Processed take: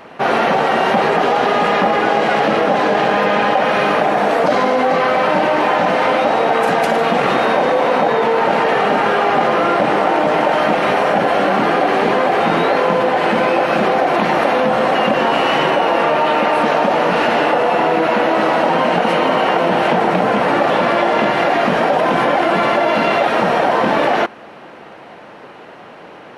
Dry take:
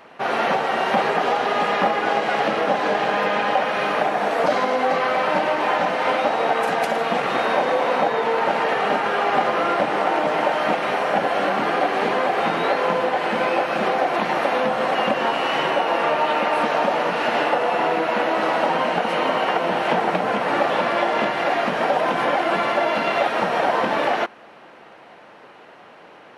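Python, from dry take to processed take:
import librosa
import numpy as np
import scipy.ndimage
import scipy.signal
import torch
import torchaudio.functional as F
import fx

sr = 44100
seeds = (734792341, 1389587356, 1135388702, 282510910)

p1 = fx.low_shelf(x, sr, hz=420.0, db=6.0)
p2 = fx.over_compress(p1, sr, threshold_db=-21.0, ratio=-1.0)
y = p1 + (p2 * librosa.db_to_amplitude(-1.5))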